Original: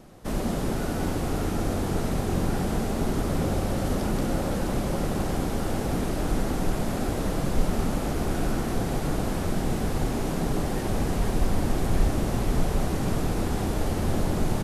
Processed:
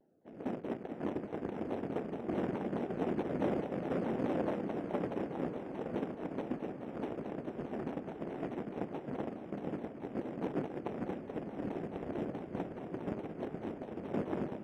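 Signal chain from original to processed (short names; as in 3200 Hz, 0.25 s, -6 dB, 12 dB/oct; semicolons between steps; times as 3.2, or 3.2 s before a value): Wiener smoothing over 41 samples; HPF 280 Hz 12 dB/oct; gate -32 dBFS, range -15 dB; polynomial smoothing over 25 samples; on a send: diffused feedback echo 0.555 s, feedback 64%, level -10.5 dB; on the sum: shaped vibrato saw down 4.7 Hz, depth 250 cents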